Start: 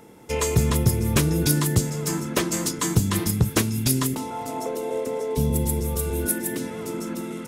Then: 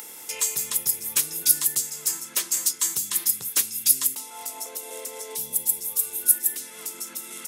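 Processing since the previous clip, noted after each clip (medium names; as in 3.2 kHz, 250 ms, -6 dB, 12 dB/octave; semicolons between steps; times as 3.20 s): high-pass 89 Hz; differentiator; upward compressor, threshold -32 dBFS; trim +4.5 dB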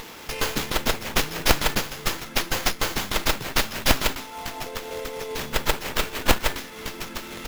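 bass shelf 380 Hz +9 dB; sliding maximum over 5 samples; trim +3 dB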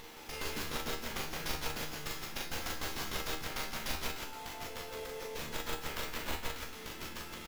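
compression, threshold -22 dBFS, peak gain reduction 11 dB; feedback comb 78 Hz, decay 0.38 s, harmonics all, mix 80%; on a send: loudspeakers at several distances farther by 14 m -2 dB, 58 m -3 dB; on the sum: trim -5 dB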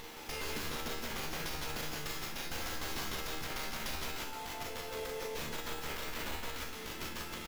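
peak limiter -30.5 dBFS, peak gain reduction 9 dB; trim +2.5 dB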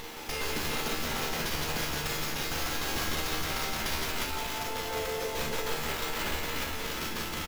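delay 356 ms -3.5 dB; trim +6 dB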